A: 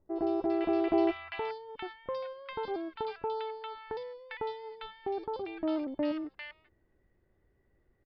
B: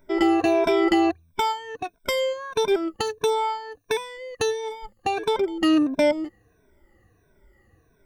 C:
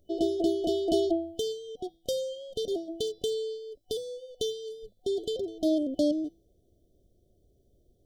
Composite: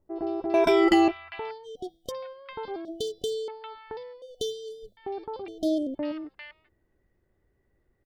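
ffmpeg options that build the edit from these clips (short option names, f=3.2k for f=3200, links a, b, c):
-filter_complex "[2:a]asplit=4[a][b][c][d];[0:a]asplit=6[e][f][g][h][i][j];[e]atrim=end=0.542[k];[1:a]atrim=start=0.538:end=1.082[l];[f]atrim=start=1.078:end=1.67[m];[a]atrim=start=1.63:end=2.12[n];[g]atrim=start=2.08:end=2.852[o];[b]atrim=start=2.848:end=3.482[p];[h]atrim=start=3.478:end=4.222[q];[c]atrim=start=4.218:end=4.972[r];[i]atrim=start=4.968:end=5.482[s];[d]atrim=start=5.478:end=5.952[t];[j]atrim=start=5.948[u];[k][l]acrossfade=d=0.004:c1=hsin:c2=hsin[v];[v][m]acrossfade=d=0.004:c1=hsin:c2=hsin[w];[w][n]acrossfade=d=0.04:c1=tri:c2=tri[x];[x][o]acrossfade=d=0.04:c1=tri:c2=tri[y];[y][p]acrossfade=d=0.004:c1=hsin:c2=hsin[z];[z][q]acrossfade=d=0.004:c1=hsin:c2=hsin[aa];[aa][r]acrossfade=d=0.004:c1=hsin:c2=hsin[ab];[ab][s]acrossfade=d=0.004:c1=hsin:c2=hsin[ac];[ac][t]acrossfade=d=0.004:c1=hsin:c2=hsin[ad];[ad][u]acrossfade=d=0.004:c1=hsin:c2=hsin"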